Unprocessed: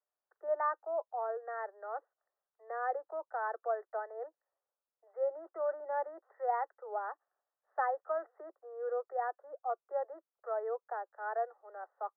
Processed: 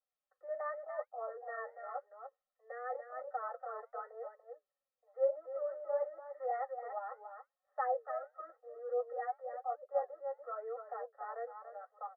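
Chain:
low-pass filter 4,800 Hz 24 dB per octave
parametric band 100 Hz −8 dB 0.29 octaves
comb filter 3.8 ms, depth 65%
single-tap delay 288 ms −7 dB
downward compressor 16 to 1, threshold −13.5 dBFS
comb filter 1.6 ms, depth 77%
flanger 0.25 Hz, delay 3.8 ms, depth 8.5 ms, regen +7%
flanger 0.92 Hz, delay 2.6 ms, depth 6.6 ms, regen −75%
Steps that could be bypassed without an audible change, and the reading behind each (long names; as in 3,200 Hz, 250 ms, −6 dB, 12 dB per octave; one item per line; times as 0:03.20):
low-pass filter 4,800 Hz: nothing at its input above 1,900 Hz
parametric band 100 Hz: nothing at its input below 300 Hz
downward compressor, threshold −13.5 dBFS: peak of its input −18.5 dBFS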